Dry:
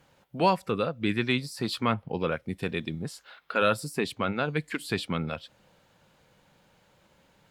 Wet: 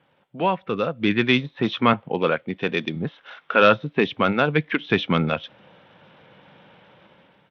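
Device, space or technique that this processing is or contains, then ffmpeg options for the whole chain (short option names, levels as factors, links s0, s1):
Bluetooth headset: -filter_complex "[0:a]asettb=1/sr,asplit=3[s0][s1][s2];[s0]atrim=end=1.934[s3];[s1]atrim=start=1.93:end=2.96,asetpts=PTS-STARTPTS,afade=t=in:d=0.004:c=qsin,afade=t=out:st=1.026:d=0.004:c=qsin,highpass=f=230:p=1[s4];[s2]atrim=start=2.956[s5];[s3][s4]acrossfade=d=0.004:c1=hsin:c2=qsin[s6];[s6][s5]acrossfade=d=0.004:c1=qsin:c2=hsin,highpass=130,dynaudnorm=f=370:g=5:m=4.47,aresample=8000,aresample=44100" -ar 32000 -c:a sbc -b:a 64k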